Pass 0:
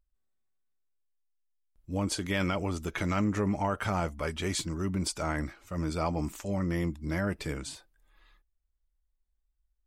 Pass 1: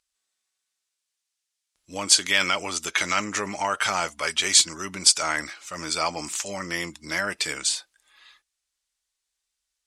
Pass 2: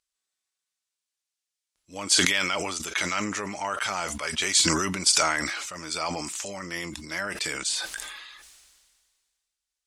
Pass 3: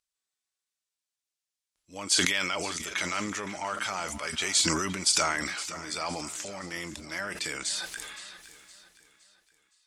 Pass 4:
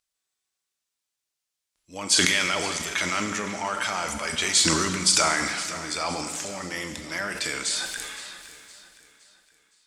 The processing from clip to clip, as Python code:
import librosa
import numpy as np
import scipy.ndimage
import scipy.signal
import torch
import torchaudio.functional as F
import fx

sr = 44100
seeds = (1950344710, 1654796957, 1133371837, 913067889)

y1 = fx.weighting(x, sr, curve='ITU-R 468')
y1 = F.gain(torch.from_numpy(y1), 6.5).numpy()
y2 = fx.sustainer(y1, sr, db_per_s=32.0)
y2 = F.gain(torch.from_numpy(y2), -5.0).numpy()
y3 = fx.echo_feedback(y2, sr, ms=515, feedback_pct=43, wet_db=-15.5)
y3 = F.gain(torch.from_numpy(y3), -3.5).numpy()
y4 = fx.rev_schroeder(y3, sr, rt60_s=1.5, comb_ms=33, drr_db=7.0)
y4 = F.gain(torch.from_numpy(y4), 4.0).numpy()